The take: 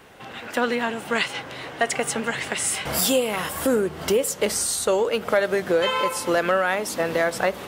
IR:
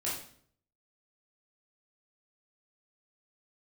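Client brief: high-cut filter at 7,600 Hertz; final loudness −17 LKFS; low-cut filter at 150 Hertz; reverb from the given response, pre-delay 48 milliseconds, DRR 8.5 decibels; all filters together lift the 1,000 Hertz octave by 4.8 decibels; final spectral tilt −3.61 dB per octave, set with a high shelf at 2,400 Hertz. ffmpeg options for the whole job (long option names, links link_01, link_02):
-filter_complex "[0:a]highpass=150,lowpass=7600,equalizer=frequency=1000:width_type=o:gain=7.5,highshelf=frequency=2400:gain=-6.5,asplit=2[link_01][link_02];[1:a]atrim=start_sample=2205,adelay=48[link_03];[link_02][link_03]afir=irnorm=-1:irlink=0,volume=-13dB[link_04];[link_01][link_04]amix=inputs=2:normalize=0,volume=5dB"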